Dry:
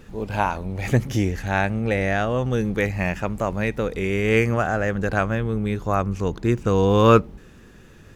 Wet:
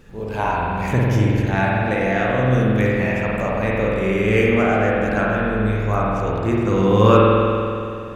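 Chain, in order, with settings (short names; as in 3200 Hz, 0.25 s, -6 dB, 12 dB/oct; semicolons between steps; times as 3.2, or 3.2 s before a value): spring tank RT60 2.6 s, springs 47 ms, chirp 45 ms, DRR -5 dB; gain -2.5 dB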